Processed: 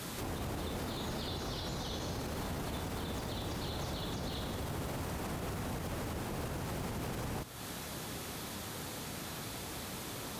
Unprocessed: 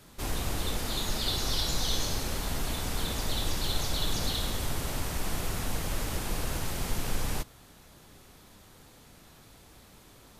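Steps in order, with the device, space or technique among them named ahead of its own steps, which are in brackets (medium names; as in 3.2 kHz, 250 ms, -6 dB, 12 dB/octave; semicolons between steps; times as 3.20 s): podcast mastering chain (high-pass 83 Hz 12 dB/octave; de-esser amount 100%; compression 3:1, threshold -49 dBFS, peak gain reduction 12.5 dB; peak limiter -43 dBFS, peak gain reduction 7 dB; trim +13.5 dB; MP3 112 kbps 44.1 kHz)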